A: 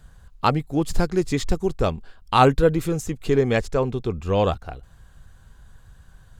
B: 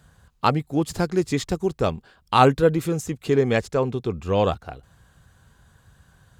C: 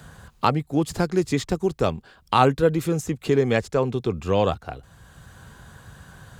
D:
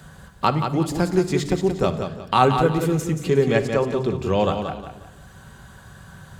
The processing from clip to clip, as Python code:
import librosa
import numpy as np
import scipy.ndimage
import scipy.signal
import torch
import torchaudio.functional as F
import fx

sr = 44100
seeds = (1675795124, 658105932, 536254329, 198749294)

y1 = scipy.signal.sosfilt(scipy.signal.butter(2, 84.0, 'highpass', fs=sr, output='sos'), x)
y2 = fx.band_squash(y1, sr, depth_pct=40)
y3 = fx.echo_feedback(y2, sr, ms=179, feedback_pct=32, wet_db=-7.0)
y3 = fx.room_shoebox(y3, sr, seeds[0], volume_m3=2900.0, walls='furnished', distance_m=1.1)